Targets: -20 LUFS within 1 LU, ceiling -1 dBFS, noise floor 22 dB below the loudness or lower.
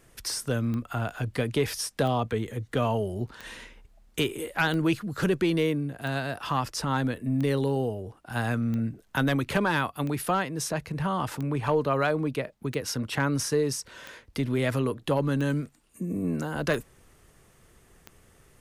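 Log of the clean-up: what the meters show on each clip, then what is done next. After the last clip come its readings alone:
clicks 14; loudness -28.5 LUFS; peak -14.5 dBFS; loudness target -20.0 LUFS
-> de-click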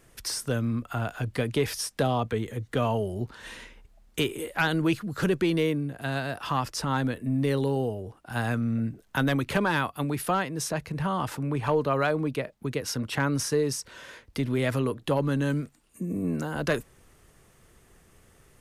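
clicks 0; loudness -28.5 LUFS; peak -14.5 dBFS; loudness target -20.0 LUFS
-> gain +8.5 dB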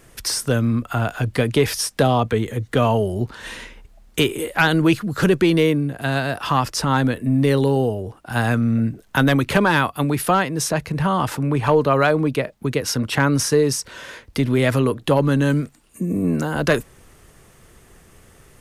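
loudness -20.0 LUFS; peak -6.0 dBFS; noise floor -52 dBFS

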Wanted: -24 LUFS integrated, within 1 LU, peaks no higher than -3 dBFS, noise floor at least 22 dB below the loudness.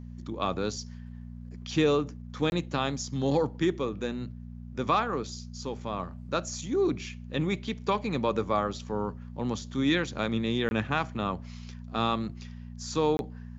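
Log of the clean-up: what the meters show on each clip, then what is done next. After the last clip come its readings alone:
dropouts 3; longest dropout 21 ms; hum 60 Hz; harmonics up to 240 Hz; hum level -39 dBFS; loudness -30.0 LUFS; peak -11.5 dBFS; loudness target -24.0 LUFS
-> interpolate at 2.5/10.69/13.17, 21 ms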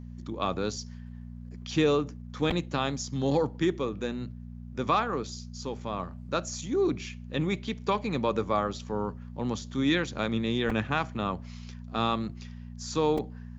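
dropouts 0; hum 60 Hz; harmonics up to 240 Hz; hum level -39 dBFS
-> de-hum 60 Hz, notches 4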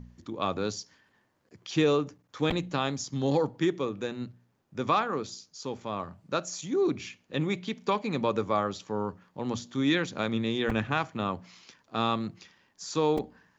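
hum none; loudness -30.5 LUFS; peak -12.0 dBFS; loudness target -24.0 LUFS
-> gain +6.5 dB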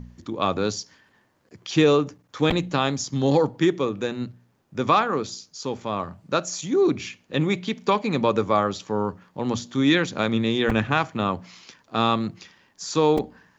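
loudness -24.0 LUFS; peak -5.5 dBFS; noise floor -64 dBFS

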